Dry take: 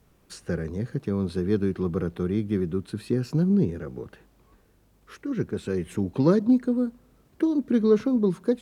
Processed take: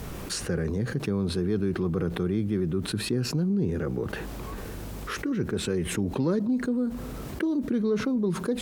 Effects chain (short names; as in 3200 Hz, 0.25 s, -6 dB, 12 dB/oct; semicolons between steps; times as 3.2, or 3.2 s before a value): fast leveller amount 70%; gain -8 dB